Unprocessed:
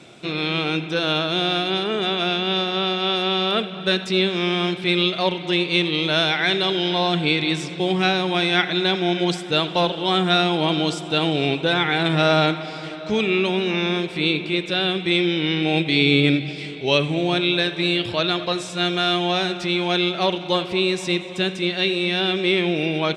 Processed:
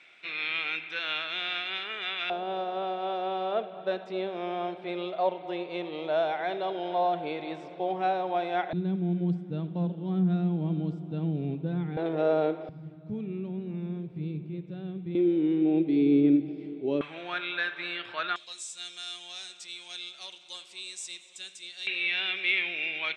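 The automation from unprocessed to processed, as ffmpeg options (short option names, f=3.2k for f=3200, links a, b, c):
-af "asetnsamples=n=441:p=0,asendcmd='2.3 bandpass f 670;8.73 bandpass f 180;11.97 bandpass f 470;12.69 bandpass f 130;15.15 bandpass f 310;17.01 bandpass f 1500;18.36 bandpass f 7700;21.87 bandpass f 2300',bandpass=f=2.1k:t=q:w=2.9:csg=0"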